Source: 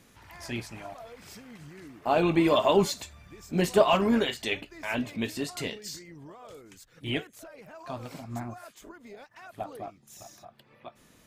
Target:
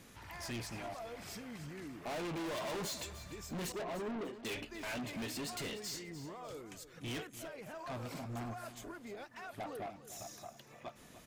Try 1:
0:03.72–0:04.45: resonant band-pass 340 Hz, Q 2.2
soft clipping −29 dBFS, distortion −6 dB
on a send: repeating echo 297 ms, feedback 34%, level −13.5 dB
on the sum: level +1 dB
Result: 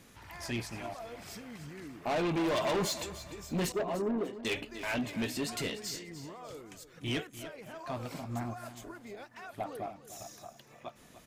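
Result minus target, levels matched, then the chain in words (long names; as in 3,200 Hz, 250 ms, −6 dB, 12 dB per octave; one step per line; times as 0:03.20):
soft clipping: distortion −5 dB
0:03.72–0:04.45: resonant band-pass 340 Hz, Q 2.2
soft clipping −39.5 dBFS, distortion 0 dB
on a send: repeating echo 297 ms, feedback 34%, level −13.5 dB
on the sum: level +1 dB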